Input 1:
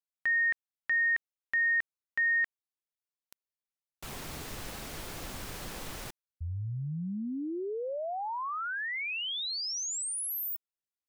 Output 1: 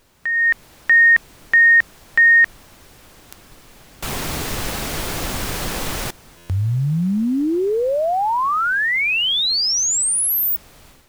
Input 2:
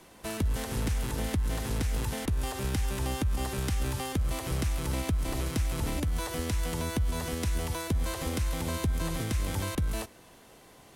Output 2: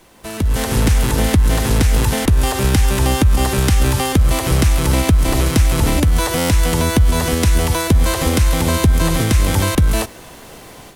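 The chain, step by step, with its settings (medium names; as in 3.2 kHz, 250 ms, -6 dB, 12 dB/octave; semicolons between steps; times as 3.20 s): added noise pink -62 dBFS; level rider gain up to 11.5 dB; buffer glitch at 6.37 s, samples 512, times 10; trim +4.5 dB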